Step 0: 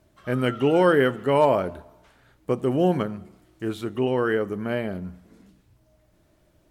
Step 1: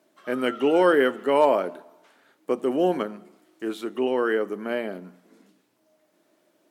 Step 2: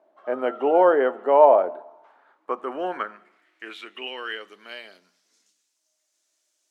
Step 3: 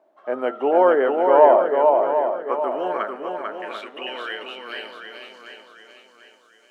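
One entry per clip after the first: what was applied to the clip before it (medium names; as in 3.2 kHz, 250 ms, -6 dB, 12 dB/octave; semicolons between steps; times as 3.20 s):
high-pass 240 Hz 24 dB/octave
band-pass sweep 730 Hz -> 6.6 kHz, 1.82–5.54 s; trim +8.5 dB
shuffle delay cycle 742 ms, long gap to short 1.5:1, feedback 37%, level -4 dB; trim +1 dB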